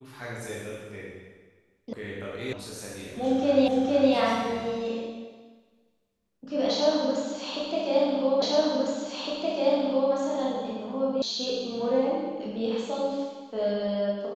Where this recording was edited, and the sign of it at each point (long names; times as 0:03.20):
0:01.93: cut off before it has died away
0:02.53: cut off before it has died away
0:03.68: the same again, the last 0.46 s
0:08.42: the same again, the last 1.71 s
0:11.22: cut off before it has died away